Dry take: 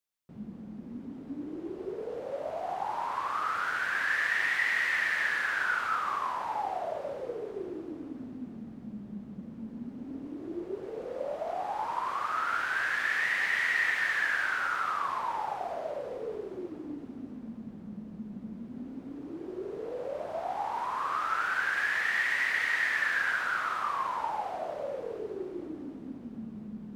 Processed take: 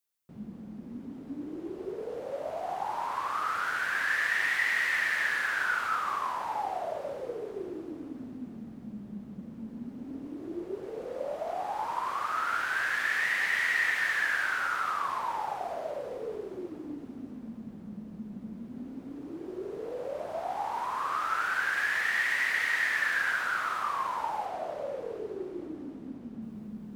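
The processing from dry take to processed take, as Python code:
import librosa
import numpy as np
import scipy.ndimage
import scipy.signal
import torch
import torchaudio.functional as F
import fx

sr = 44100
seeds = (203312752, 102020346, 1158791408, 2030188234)

y = fx.high_shelf(x, sr, hz=7600.0, db=fx.steps((0.0, 7.5), (24.45, 2.5), (26.41, 10.5)))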